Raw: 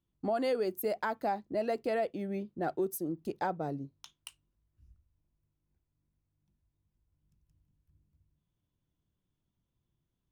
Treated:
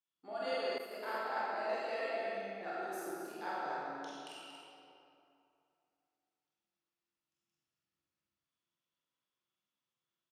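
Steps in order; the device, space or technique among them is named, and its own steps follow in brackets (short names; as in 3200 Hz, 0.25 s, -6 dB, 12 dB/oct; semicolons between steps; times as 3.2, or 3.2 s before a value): station announcement (BPF 360–3900 Hz; bell 1300 Hz +6 dB 0.33 oct; loudspeakers at several distances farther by 16 m -2 dB, 33 m -9 dB; reverb RT60 2.8 s, pre-delay 21 ms, DRR -8 dB); pre-emphasis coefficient 0.9; loudspeakers at several distances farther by 38 m -9 dB, 80 m -8 dB; 0.78–1.37 expander -34 dBFS; gain +1 dB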